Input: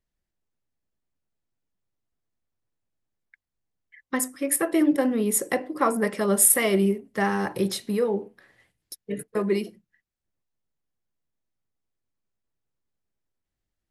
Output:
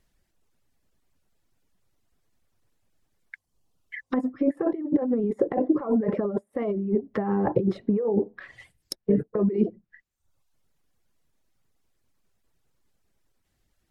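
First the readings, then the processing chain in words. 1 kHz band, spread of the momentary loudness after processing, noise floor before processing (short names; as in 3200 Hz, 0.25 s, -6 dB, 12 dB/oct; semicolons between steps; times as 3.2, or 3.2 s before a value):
-5.0 dB, 7 LU, -85 dBFS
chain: negative-ratio compressor -30 dBFS, ratio -1; reverb removal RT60 0.78 s; treble ducked by the level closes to 670 Hz, closed at -31.5 dBFS; gain +8 dB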